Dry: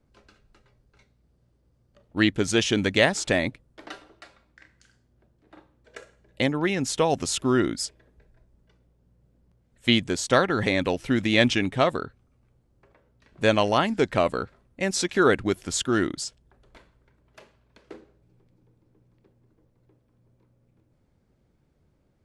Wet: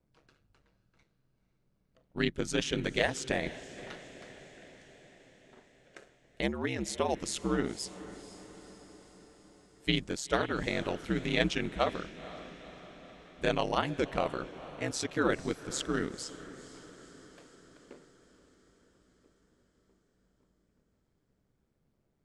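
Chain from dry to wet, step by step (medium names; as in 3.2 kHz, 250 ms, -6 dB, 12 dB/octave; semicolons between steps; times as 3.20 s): ring modulator 70 Hz; echo that smears into a reverb 494 ms, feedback 60%, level -15.5 dB; trim -6 dB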